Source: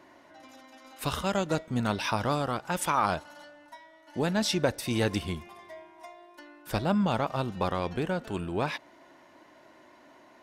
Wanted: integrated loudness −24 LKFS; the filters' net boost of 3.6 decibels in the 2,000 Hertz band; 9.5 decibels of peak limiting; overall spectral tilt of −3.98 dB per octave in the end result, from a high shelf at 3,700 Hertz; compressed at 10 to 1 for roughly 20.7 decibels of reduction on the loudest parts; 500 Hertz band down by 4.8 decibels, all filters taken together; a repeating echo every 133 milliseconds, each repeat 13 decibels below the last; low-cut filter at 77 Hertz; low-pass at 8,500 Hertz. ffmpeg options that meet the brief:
ffmpeg -i in.wav -af "highpass=77,lowpass=8500,equalizer=frequency=500:width_type=o:gain=-6.5,equalizer=frequency=2000:width_type=o:gain=4,highshelf=frequency=3700:gain=5,acompressor=threshold=-43dB:ratio=10,alimiter=level_in=13dB:limit=-24dB:level=0:latency=1,volume=-13dB,aecho=1:1:133|266|399:0.224|0.0493|0.0108,volume=25.5dB" out.wav

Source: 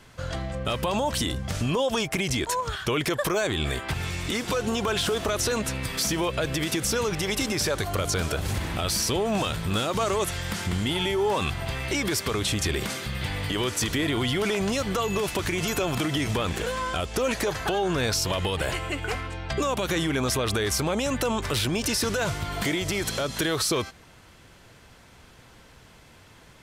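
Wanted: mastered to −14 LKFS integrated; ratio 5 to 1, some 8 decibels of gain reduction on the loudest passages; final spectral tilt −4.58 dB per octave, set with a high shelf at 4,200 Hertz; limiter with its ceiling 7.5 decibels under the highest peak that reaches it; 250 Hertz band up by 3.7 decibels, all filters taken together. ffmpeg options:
ffmpeg -i in.wav -af "equalizer=frequency=250:width_type=o:gain=5,highshelf=frequency=4200:gain=-5,acompressor=threshold=-29dB:ratio=5,volume=20.5dB,alimiter=limit=-5.5dB:level=0:latency=1" out.wav

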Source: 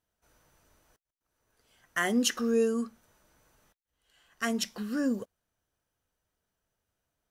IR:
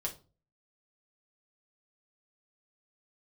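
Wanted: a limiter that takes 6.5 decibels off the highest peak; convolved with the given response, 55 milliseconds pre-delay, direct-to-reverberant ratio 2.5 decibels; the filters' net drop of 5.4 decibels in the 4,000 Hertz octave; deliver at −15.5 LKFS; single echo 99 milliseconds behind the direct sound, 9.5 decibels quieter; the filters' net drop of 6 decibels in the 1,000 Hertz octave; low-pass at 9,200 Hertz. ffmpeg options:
-filter_complex "[0:a]lowpass=9200,equalizer=frequency=1000:width_type=o:gain=-8.5,equalizer=frequency=4000:width_type=o:gain=-7.5,alimiter=level_in=0.5dB:limit=-24dB:level=0:latency=1,volume=-0.5dB,aecho=1:1:99:0.335,asplit=2[link_01][link_02];[1:a]atrim=start_sample=2205,adelay=55[link_03];[link_02][link_03]afir=irnorm=-1:irlink=0,volume=-4dB[link_04];[link_01][link_04]amix=inputs=2:normalize=0,volume=16.5dB"

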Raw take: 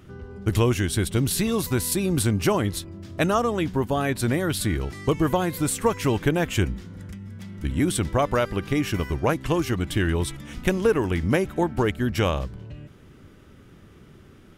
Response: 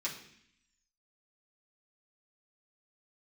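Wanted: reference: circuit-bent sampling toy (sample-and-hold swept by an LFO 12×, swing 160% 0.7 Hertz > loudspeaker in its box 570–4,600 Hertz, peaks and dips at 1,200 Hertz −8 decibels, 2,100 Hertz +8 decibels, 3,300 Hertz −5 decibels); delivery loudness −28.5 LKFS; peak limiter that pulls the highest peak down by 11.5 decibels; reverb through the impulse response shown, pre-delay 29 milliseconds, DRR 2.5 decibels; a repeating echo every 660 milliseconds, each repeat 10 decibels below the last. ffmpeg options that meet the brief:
-filter_complex "[0:a]alimiter=limit=-17.5dB:level=0:latency=1,aecho=1:1:660|1320|1980|2640:0.316|0.101|0.0324|0.0104,asplit=2[link_01][link_02];[1:a]atrim=start_sample=2205,adelay=29[link_03];[link_02][link_03]afir=irnorm=-1:irlink=0,volume=-5dB[link_04];[link_01][link_04]amix=inputs=2:normalize=0,acrusher=samples=12:mix=1:aa=0.000001:lfo=1:lforange=19.2:lforate=0.7,highpass=570,equalizer=frequency=1200:width_type=q:width=4:gain=-8,equalizer=frequency=2100:width_type=q:width=4:gain=8,equalizer=frequency=3300:width_type=q:width=4:gain=-5,lowpass=frequency=4600:width=0.5412,lowpass=frequency=4600:width=1.3066,volume=3.5dB"

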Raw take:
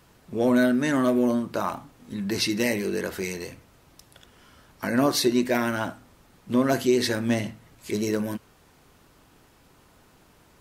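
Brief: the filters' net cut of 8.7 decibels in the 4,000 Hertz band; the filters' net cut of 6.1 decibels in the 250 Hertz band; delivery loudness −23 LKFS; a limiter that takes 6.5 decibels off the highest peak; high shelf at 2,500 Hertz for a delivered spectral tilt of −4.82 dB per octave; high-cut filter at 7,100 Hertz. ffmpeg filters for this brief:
ffmpeg -i in.wav -af "lowpass=7100,equalizer=frequency=250:width_type=o:gain=-7,highshelf=frequency=2500:gain=-5,equalizer=frequency=4000:width_type=o:gain=-5.5,volume=8dB,alimiter=limit=-11.5dB:level=0:latency=1" out.wav

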